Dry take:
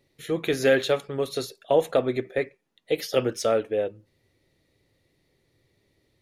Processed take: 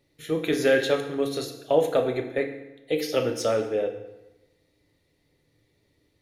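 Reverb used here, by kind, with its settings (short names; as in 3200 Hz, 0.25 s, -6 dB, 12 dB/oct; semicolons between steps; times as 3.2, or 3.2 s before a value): FDN reverb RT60 1 s, low-frequency decay 1.1×, high-frequency decay 0.8×, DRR 4.5 dB; gain -1.5 dB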